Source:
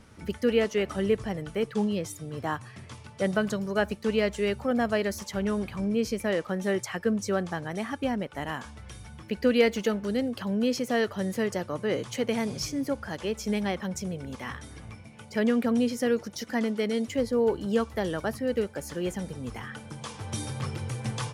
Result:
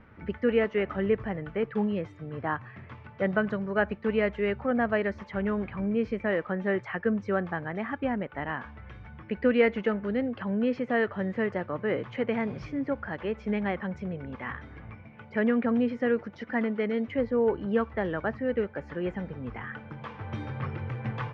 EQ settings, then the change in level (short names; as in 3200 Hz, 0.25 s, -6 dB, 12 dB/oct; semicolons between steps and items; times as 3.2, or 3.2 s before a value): ladder low-pass 2500 Hz, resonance 30%; +6.0 dB